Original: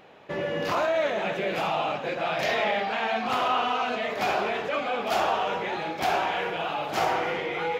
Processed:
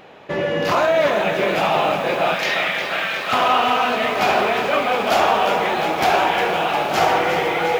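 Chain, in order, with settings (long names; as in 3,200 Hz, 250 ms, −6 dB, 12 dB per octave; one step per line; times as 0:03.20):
0:02.34–0:03.33: elliptic high-pass filter 1,200 Hz
feedback echo at a low word length 356 ms, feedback 80%, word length 8 bits, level −9 dB
level +8 dB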